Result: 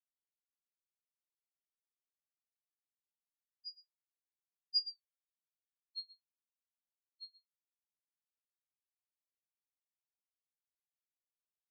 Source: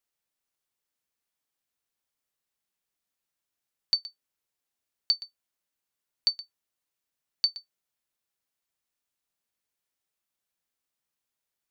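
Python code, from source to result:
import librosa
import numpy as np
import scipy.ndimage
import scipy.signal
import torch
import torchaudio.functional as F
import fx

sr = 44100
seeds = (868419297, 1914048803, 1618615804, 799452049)

y = fx.doppler_pass(x, sr, speed_mps=23, closest_m=2.1, pass_at_s=4.98)
y = fx.spec_topn(y, sr, count=1)
y = y * librosa.db_to_amplitude(9.0)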